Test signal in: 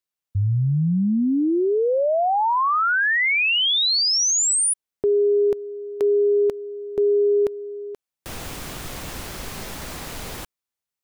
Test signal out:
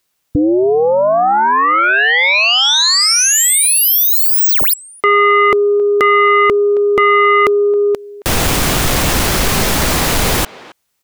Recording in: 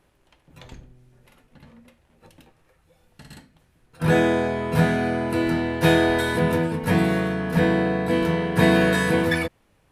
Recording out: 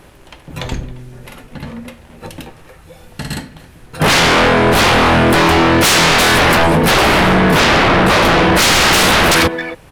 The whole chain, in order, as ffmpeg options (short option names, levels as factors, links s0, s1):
-filter_complex "[0:a]asplit=2[s0][s1];[s1]adelay=270,highpass=300,lowpass=3400,asoftclip=type=hard:threshold=0.2,volume=0.112[s2];[s0][s2]amix=inputs=2:normalize=0,aeval=exprs='0.596*sin(PI/2*10*val(0)/0.596)':c=same,volume=0.708"